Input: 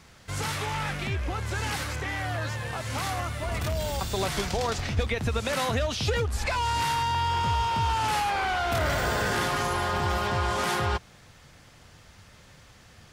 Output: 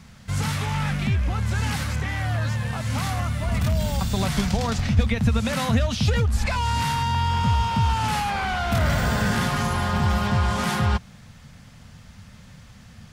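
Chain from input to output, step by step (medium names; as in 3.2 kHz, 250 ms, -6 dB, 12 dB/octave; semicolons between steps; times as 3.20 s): resonant low shelf 270 Hz +6 dB, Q 3; trim +1.5 dB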